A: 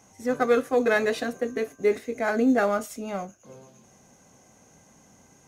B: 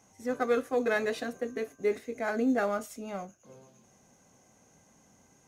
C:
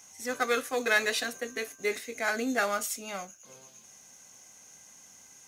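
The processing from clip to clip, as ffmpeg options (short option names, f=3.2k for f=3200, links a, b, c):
-af "bandreject=f=73.38:t=h:w=4,bandreject=f=146.76:t=h:w=4,volume=-6dB"
-af "tiltshelf=f=1.2k:g=-10,volume=4dB"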